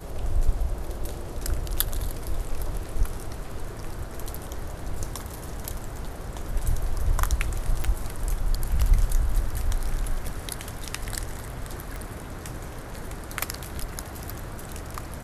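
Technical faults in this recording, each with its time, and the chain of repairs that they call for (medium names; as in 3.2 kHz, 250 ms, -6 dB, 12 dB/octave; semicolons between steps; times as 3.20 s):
7.84 s: pop
11.96 s: pop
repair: de-click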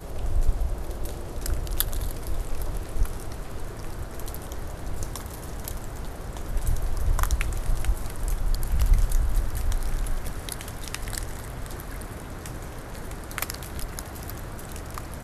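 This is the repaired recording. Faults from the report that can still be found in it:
11.96 s: pop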